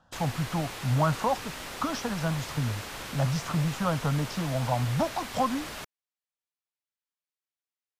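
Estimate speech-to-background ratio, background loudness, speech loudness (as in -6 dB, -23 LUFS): 8.0 dB, -38.0 LUFS, -30.0 LUFS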